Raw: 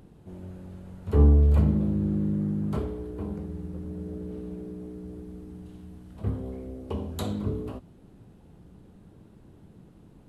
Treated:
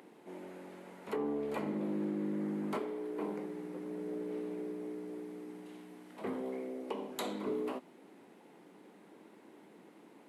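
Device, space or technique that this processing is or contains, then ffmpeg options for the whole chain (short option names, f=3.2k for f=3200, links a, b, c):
laptop speaker: -af "highpass=f=270:w=0.5412,highpass=f=270:w=1.3066,equalizer=f=920:t=o:w=0.42:g=4.5,equalizer=f=2.1k:t=o:w=0.51:g=9.5,alimiter=level_in=3.5dB:limit=-24dB:level=0:latency=1:release=458,volume=-3.5dB,volume=1dB"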